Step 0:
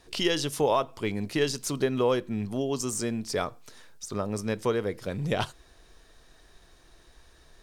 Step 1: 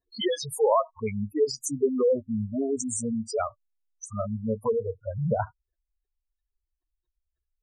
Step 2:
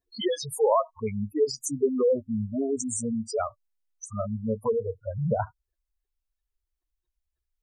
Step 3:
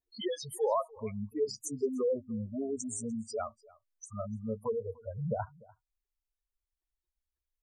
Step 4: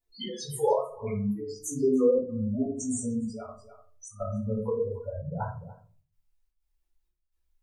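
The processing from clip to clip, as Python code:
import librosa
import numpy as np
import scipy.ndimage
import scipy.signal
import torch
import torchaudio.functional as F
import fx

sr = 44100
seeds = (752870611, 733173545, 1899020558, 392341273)

y1 = fx.noise_reduce_blind(x, sr, reduce_db=29)
y1 = fx.spec_gate(y1, sr, threshold_db=-10, keep='strong')
y1 = y1 * librosa.db_to_amplitude(4.0)
y2 = fx.dynamic_eq(y1, sr, hz=2300.0, q=1.7, threshold_db=-51.0, ratio=4.0, max_db=-5)
y3 = y2 + 10.0 ** (-23.5 / 20.0) * np.pad(y2, (int(296 * sr / 1000.0), 0))[:len(y2)]
y3 = y3 * librosa.db_to_amplitude(-7.5)
y4 = fx.step_gate(y3, sr, bpm=125, pattern='xx.xxx.xxxx..xxx', floor_db=-12.0, edge_ms=4.5)
y4 = fx.room_shoebox(y4, sr, seeds[0], volume_m3=250.0, walls='furnished', distance_m=4.4)
y4 = y4 * librosa.db_to_amplitude(-2.0)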